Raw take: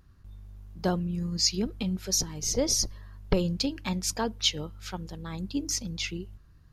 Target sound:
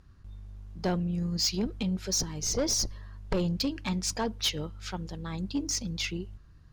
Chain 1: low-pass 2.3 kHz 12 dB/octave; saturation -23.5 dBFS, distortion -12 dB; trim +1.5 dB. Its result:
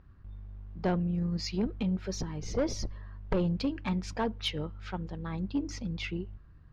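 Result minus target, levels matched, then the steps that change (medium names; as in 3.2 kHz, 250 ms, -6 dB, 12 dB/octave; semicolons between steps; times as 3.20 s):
8 kHz band -12.5 dB
change: low-pass 8.5 kHz 12 dB/octave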